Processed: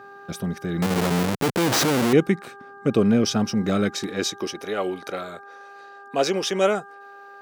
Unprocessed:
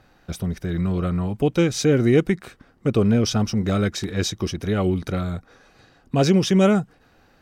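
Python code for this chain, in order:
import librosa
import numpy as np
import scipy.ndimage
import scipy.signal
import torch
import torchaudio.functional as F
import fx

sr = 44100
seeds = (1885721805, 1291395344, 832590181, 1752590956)

y = fx.dmg_buzz(x, sr, base_hz=400.0, harmonics=4, level_db=-44.0, tilt_db=0, odd_only=False)
y = fx.schmitt(y, sr, flips_db=-30.0, at=(0.82, 2.13))
y = fx.filter_sweep_highpass(y, sr, from_hz=180.0, to_hz=480.0, start_s=3.81, end_s=4.71, q=0.95)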